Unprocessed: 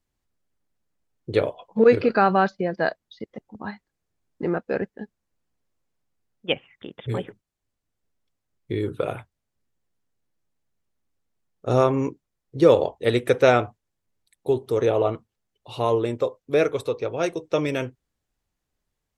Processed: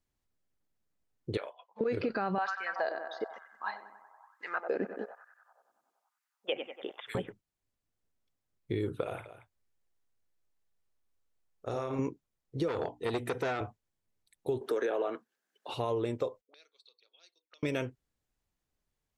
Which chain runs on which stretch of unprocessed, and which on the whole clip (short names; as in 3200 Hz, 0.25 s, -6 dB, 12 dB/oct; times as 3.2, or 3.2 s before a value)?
1.37–1.81 HPF 1100 Hz + high shelf 3600 Hz -11 dB
2.38–7.15 high shelf 4700 Hz +7 dB + narrowing echo 94 ms, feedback 77%, band-pass 1000 Hz, level -11 dB + LFO high-pass sine 1.1 Hz 240–1700 Hz
9.03–11.99 bell 180 Hz -8 dB 1.6 oct + compressor, threshold -26 dBFS + tapped delay 53/228 ms -7/-13.5 dB
12.68–13.61 notches 60/120/180/240/300 Hz + notch comb 560 Hz + core saturation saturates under 1400 Hz
14.61–15.74 HPF 250 Hz 24 dB/oct + bell 1600 Hz +14.5 dB 0.31 oct + three-band squash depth 40%
16.41–17.63 HPF 240 Hz 24 dB/oct + auto-wah 440–4400 Hz, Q 20, up, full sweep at -23.5 dBFS
whole clip: limiter -14 dBFS; compressor, threshold -23 dBFS; gain -4.5 dB